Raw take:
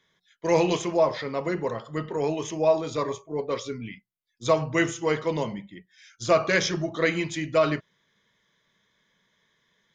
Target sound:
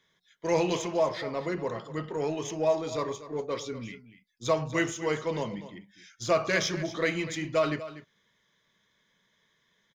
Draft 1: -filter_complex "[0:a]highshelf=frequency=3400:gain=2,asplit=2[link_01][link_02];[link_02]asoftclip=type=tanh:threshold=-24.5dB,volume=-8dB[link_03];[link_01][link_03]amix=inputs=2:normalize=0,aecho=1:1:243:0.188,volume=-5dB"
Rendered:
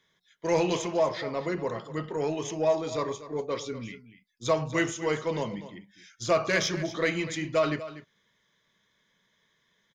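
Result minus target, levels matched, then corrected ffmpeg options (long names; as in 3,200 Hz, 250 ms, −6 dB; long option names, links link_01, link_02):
soft clipping: distortion −5 dB
-filter_complex "[0:a]highshelf=frequency=3400:gain=2,asplit=2[link_01][link_02];[link_02]asoftclip=type=tanh:threshold=-34.5dB,volume=-8dB[link_03];[link_01][link_03]amix=inputs=2:normalize=0,aecho=1:1:243:0.188,volume=-5dB"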